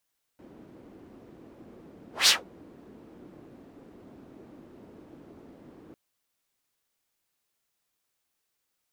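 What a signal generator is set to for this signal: whoosh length 5.55 s, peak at 1.89 s, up 0.17 s, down 0.17 s, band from 300 Hz, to 4.7 kHz, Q 1.8, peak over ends 33 dB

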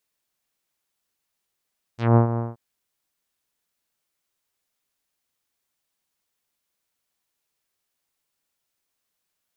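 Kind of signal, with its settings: synth note saw A#2 24 dB/octave, low-pass 1.1 kHz, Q 1, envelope 3 oct, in 0.11 s, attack 180 ms, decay 0.11 s, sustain -11 dB, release 0.18 s, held 0.40 s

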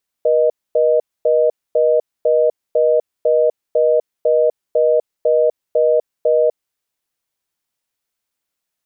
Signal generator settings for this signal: call progress tone reorder tone, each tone -13.5 dBFS 6.34 s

